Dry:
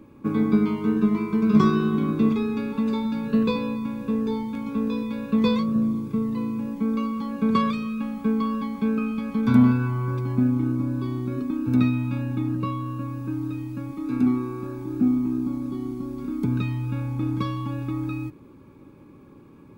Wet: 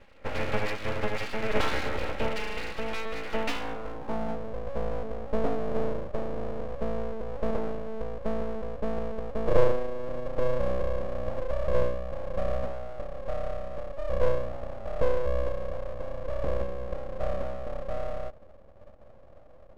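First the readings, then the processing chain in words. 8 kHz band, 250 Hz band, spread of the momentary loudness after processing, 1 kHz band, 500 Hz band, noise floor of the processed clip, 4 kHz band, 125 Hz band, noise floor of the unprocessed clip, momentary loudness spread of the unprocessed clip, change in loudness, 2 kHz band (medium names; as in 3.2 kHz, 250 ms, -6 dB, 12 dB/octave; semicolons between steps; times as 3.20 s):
no reading, -18.0 dB, 9 LU, -3.5 dB, +3.0 dB, -50 dBFS, -1.0 dB, -10.5 dB, -48 dBFS, 10 LU, -8.0 dB, +1.0 dB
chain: comb filter that takes the minimum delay 3.7 ms; high-pass 61 Hz 6 dB/octave; low-pass sweep 1.9 kHz -> 370 Hz, 3.45–4.37 s; resonant high shelf 1.8 kHz +8 dB, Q 1.5; full-wave rectifier; trim -3.5 dB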